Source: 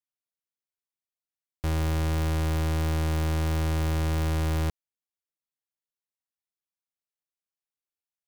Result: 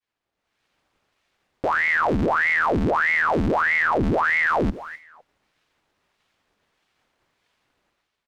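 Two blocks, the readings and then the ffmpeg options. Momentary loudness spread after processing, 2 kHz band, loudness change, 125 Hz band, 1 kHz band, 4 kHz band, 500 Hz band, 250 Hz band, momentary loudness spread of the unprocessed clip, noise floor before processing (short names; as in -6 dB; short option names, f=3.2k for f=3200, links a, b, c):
7 LU, +20.5 dB, +7.5 dB, -5.5 dB, +14.5 dB, 0.0 dB, +10.5 dB, +6.0 dB, 3 LU, under -85 dBFS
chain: -filter_complex "[0:a]aeval=exprs='val(0)+0.5*0.00299*sgn(val(0))':c=same,highpass=86,aemphasis=mode=reproduction:type=75kf,agate=range=-33dB:threshold=-57dB:ratio=3:detection=peak,lowpass=f=3k:p=1,lowshelf=f=150:g=5,dynaudnorm=f=150:g=7:m=15dB,alimiter=limit=-12.5dB:level=0:latency=1:release=69,asoftclip=type=tanh:threshold=-18dB,asplit=2[a][b];[b]adelay=253,lowpass=f=1.6k:p=1,volume=-16dB,asplit=2[c][d];[d]adelay=253,lowpass=f=1.6k:p=1,volume=0.24[e];[c][e]amix=inputs=2:normalize=0[f];[a][f]amix=inputs=2:normalize=0,aeval=exprs='val(0)*sin(2*PI*1100*n/s+1100*0.9/1.6*sin(2*PI*1.6*n/s))':c=same,volume=5dB"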